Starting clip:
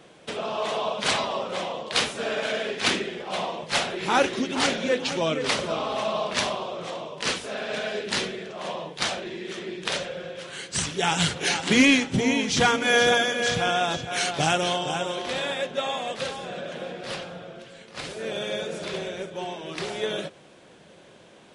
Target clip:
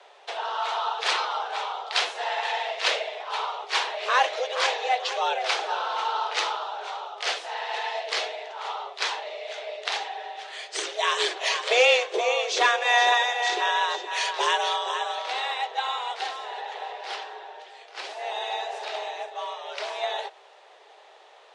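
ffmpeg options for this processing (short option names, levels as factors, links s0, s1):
-filter_complex "[0:a]afreqshift=250,highpass=120,lowpass=5400,acrossover=split=370|830|2700[s0][s1][s2][s3];[s0]acrusher=bits=2:mix=0:aa=0.5[s4];[s4][s1][s2][s3]amix=inputs=4:normalize=0"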